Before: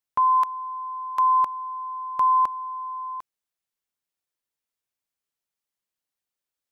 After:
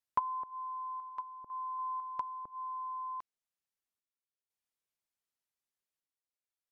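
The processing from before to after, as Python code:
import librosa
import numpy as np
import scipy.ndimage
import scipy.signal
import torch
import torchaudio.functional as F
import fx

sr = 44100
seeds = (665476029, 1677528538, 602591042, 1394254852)

y = fx.lowpass(x, sr, hz=1400.0, slope=6, at=(1.09, 1.79))
y = fx.env_lowpass_down(y, sr, base_hz=460.0, full_db=-19.0)
y = fx.tremolo_random(y, sr, seeds[0], hz=2.0, depth_pct=75)
y = y * librosa.db_to_amplitude(-4.5)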